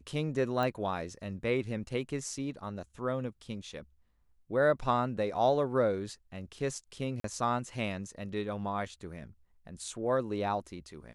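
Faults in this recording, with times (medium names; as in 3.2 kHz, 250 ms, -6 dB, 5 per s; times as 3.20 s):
0.63 s: pop -21 dBFS
7.20–7.24 s: dropout 43 ms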